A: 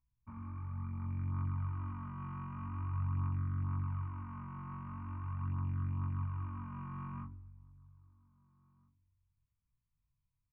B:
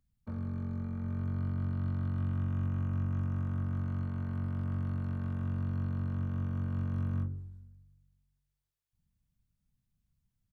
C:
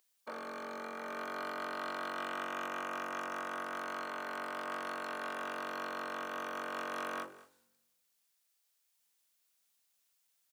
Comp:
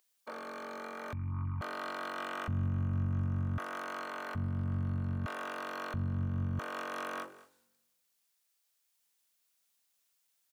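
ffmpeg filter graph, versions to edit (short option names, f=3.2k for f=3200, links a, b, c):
-filter_complex "[1:a]asplit=3[a][b][c];[2:a]asplit=5[d][e][f][g][h];[d]atrim=end=1.132[i];[0:a]atrim=start=1.128:end=1.612[j];[e]atrim=start=1.608:end=2.482[k];[a]atrim=start=2.478:end=3.582[l];[f]atrim=start=3.578:end=4.352[m];[b]atrim=start=4.348:end=5.262[n];[g]atrim=start=5.258:end=5.942[o];[c]atrim=start=5.938:end=6.592[p];[h]atrim=start=6.588[q];[i][j]acrossfade=d=0.004:c1=hsin:c2=hsin[r];[r][k]acrossfade=d=0.004:c1=hsin:c2=hsin[s];[s][l]acrossfade=d=0.004:c1=hsin:c2=hsin[t];[t][m]acrossfade=d=0.004:c1=hsin:c2=hsin[u];[u][n]acrossfade=d=0.004:c1=hsin:c2=hsin[v];[v][o]acrossfade=d=0.004:c1=hsin:c2=hsin[w];[w][p]acrossfade=d=0.004:c1=hsin:c2=hsin[x];[x][q]acrossfade=d=0.004:c1=hsin:c2=hsin"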